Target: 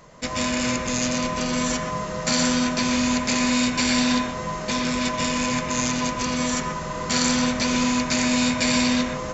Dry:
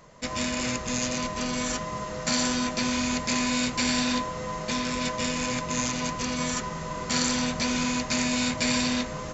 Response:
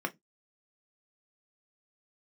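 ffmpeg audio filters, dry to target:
-filter_complex "[0:a]asplit=2[a][b];[1:a]atrim=start_sample=2205,adelay=122[c];[b][c]afir=irnorm=-1:irlink=0,volume=-10.5dB[d];[a][d]amix=inputs=2:normalize=0,volume=3.5dB"

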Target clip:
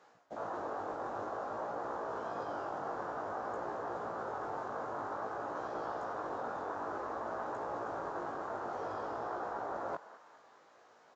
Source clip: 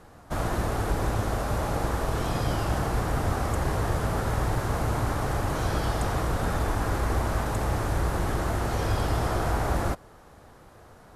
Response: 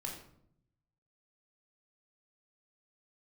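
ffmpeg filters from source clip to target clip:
-filter_complex "[0:a]afwtdn=0.0355,highpass=460,areverse,acompressor=threshold=-47dB:ratio=5,areverse,flanger=delay=16.5:depth=4.5:speed=0.53,asplit=2[a][b];[b]asplit=4[c][d][e][f];[c]adelay=203,afreqshift=110,volume=-17dB[g];[d]adelay=406,afreqshift=220,volume=-23.4dB[h];[e]adelay=609,afreqshift=330,volume=-29.8dB[i];[f]adelay=812,afreqshift=440,volume=-36.1dB[j];[g][h][i][j]amix=inputs=4:normalize=0[k];[a][k]amix=inputs=2:normalize=0,aresample=16000,aresample=44100,volume=11.5dB"

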